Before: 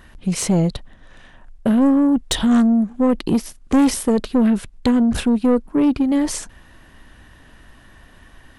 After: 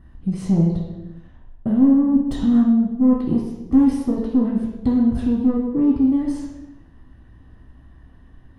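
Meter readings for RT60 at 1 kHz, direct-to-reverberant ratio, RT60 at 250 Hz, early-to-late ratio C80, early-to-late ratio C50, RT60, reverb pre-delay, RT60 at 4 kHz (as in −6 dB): 0.95 s, −3.0 dB, 1.4 s, 5.0 dB, 2.0 dB, 1.1 s, 3 ms, 0.80 s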